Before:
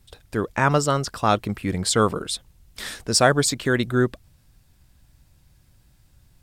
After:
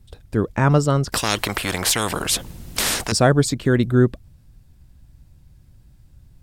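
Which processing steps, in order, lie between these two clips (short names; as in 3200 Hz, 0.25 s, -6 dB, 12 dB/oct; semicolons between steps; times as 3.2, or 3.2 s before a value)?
low shelf 460 Hz +11.5 dB; 1.12–3.12 spectral compressor 4:1; gain -3.5 dB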